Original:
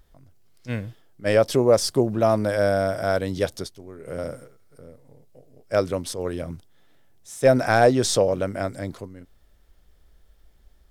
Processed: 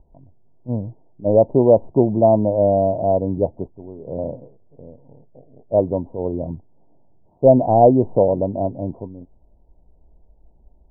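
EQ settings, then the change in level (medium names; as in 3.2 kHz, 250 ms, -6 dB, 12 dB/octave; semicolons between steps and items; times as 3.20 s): rippled Chebyshev low-pass 960 Hz, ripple 3 dB; +6.5 dB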